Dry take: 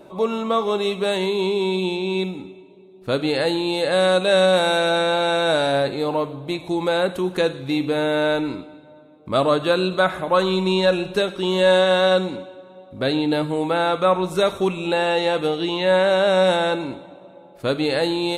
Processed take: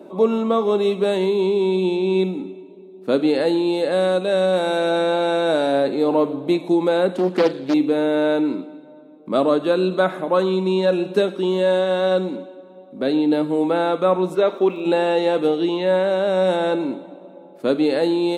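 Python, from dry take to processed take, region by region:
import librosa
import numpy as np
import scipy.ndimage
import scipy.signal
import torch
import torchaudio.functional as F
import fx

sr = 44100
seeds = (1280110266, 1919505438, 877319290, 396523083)

y = fx.chain(x, sr, fx.lowpass(hz=6800.0, slope=12),
    fx.high_shelf(hz=4600.0, db=7.0),
    fx.doppler_dist(depth_ms=0.52), at=(7.14, 7.74))
y = fx.bandpass_edges(y, sr, low_hz=300.0, high_hz=3600.0, at=(14.34, 14.84), fade=0.02)
y = fx.dmg_crackle(y, sr, seeds[0], per_s=180.0, level_db=-43.0, at=(14.34, 14.84), fade=0.02)
y = fx.peak_eq(y, sr, hz=250.0, db=11.0, octaves=3.0)
y = fx.rider(y, sr, range_db=10, speed_s=0.5)
y = scipy.signal.sosfilt(scipy.signal.butter(4, 190.0, 'highpass', fs=sr, output='sos'), y)
y = F.gain(torch.from_numpy(y), -6.0).numpy()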